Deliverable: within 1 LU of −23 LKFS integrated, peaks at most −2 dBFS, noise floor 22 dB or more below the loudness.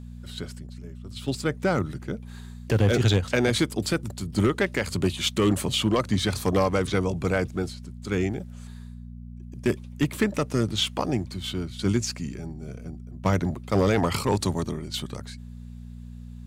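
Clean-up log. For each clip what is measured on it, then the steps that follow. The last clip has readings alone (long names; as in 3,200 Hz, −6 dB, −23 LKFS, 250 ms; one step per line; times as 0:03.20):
share of clipped samples 0.6%; peaks flattened at −14.0 dBFS; mains hum 60 Hz; hum harmonics up to 240 Hz; level of the hum −38 dBFS; integrated loudness −26.0 LKFS; sample peak −14.0 dBFS; target loudness −23.0 LKFS
→ clipped peaks rebuilt −14 dBFS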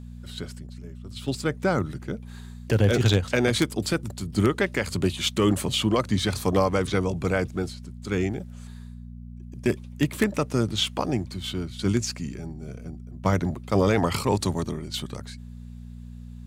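share of clipped samples 0.0%; mains hum 60 Hz; hum harmonics up to 240 Hz; level of the hum −38 dBFS
→ hum removal 60 Hz, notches 4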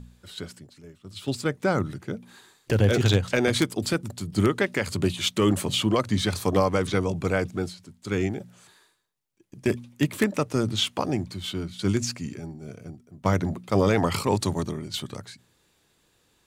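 mains hum none found; integrated loudness −25.5 LKFS; sample peak −5.0 dBFS; target loudness −23.0 LKFS
→ level +2.5 dB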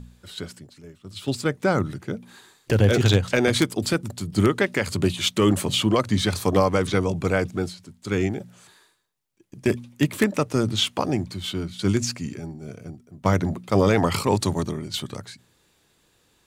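integrated loudness −23.5 LKFS; sample peak −2.5 dBFS; background noise floor −64 dBFS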